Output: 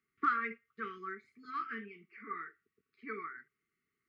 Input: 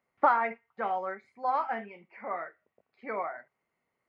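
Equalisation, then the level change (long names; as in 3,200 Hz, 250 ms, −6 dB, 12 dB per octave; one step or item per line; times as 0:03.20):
linear-phase brick-wall band-stop 460–1,100 Hz
−3.0 dB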